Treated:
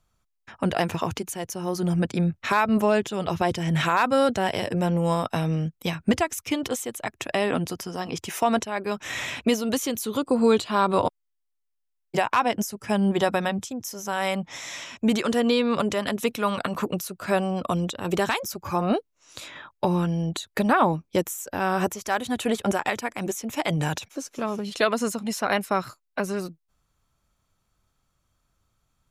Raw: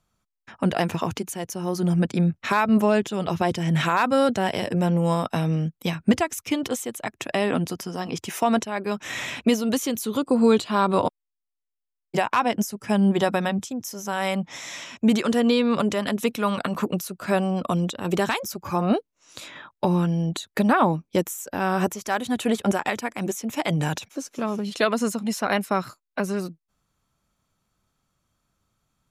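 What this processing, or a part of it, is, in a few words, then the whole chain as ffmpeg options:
low shelf boost with a cut just above: -af "lowshelf=f=89:g=7,equalizer=f=200:t=o:w=1.2:g=-4.5"

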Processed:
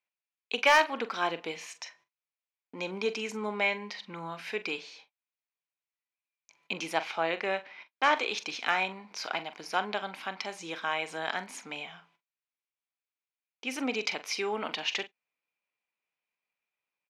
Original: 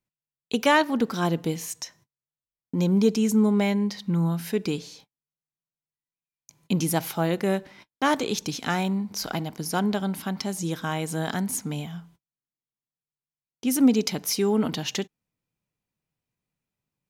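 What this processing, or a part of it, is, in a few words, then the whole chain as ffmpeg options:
megaphone: -filter_complex "[0:a]highpass=660,lowpass=3.7k,equalizer=f=2.4k:t=o:w=0.36:g=8.5,asoftclip=type=hard:threshold=-13.5dB,asplit=2[a][b];[b]adelay=43,volume=-13dB[c];[a][c]amix=inputs=2:normalize=0,asettb=1/sr,asplit=3[d][e][f];[d]atrim=end=6.944[g];[e]atrim=start=6.94:end=8.17,asetpts=PTS-STARTPTS,afade=t=in:d=0.004:c=qsin,afade=t=out:st=1.226:d=0.004:c=qsin,lowpass=7.1k[h];[f]atrim=start=8.166[i];[g][h]acrossfade=d=0.004:c1=hsin:c2=qsin[j];[j][i]acrossfade=d=0.004:c1=qsin:c2=hsin"

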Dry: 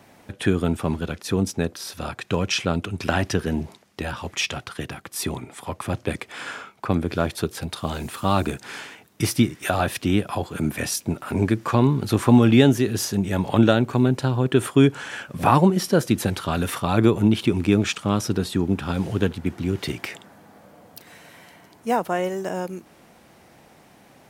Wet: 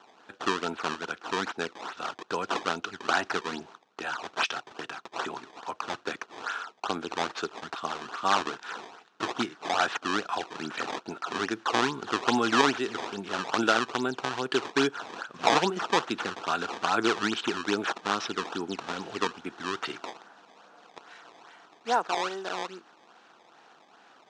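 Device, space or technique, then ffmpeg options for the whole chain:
circuit-bent sampling toy: -af "acrusher=samples=18:mix=1:aa=0.000001:lfo=1:lforange=28.8:lforate=2.4,highpass=530,equalizer=f=570:t=q:w=4:g=-9,equalizer=f=1.4k:t=q:w=4:g=5,equalizer=f=2.1k:t=q:w=4:g=-7,equalizer=f=4.9k:t=q:w=4:g=-4,lowpass=f=5.9k:w=0.5412,lowpass=f=5.9k:w=1.3066"

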